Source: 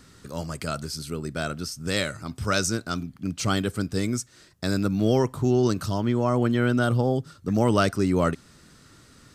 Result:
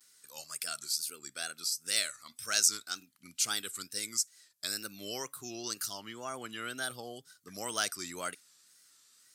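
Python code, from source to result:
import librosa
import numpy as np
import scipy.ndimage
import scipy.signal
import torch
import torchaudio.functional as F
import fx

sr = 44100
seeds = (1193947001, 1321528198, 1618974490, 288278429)

y = fx.noise_reduce_blind(x, sr, reduce_db=7)
y = fx.wow_flutter(y, sr, seeds[0], rate_hz=2.1, depth_cents=130.0)
y = np.diff(y, prepend=0.0)
y = y * 10.0 ** (4.0 / 20.0)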